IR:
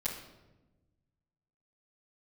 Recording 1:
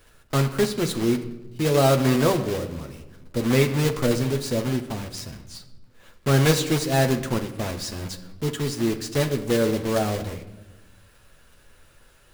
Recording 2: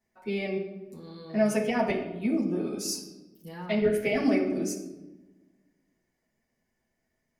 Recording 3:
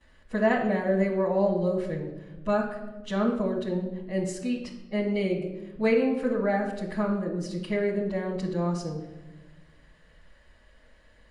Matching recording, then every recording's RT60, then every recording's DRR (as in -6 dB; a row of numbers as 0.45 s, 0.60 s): 3; 1.1 s, 1.1 s, 1.1 s; 4.5 dB, -5.5 dB, -15.0 dB